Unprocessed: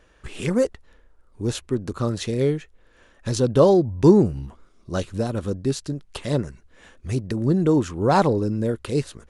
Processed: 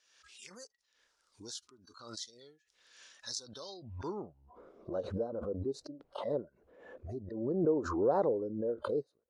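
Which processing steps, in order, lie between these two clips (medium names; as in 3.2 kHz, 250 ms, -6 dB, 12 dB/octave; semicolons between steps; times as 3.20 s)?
spectral noise reduction 20 dB; band-pass sweep 5.3 kHz -> 510 Hz, 3.63–4.54 s; swell ahead of each attack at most 55 dB/s; trim -6.5 dB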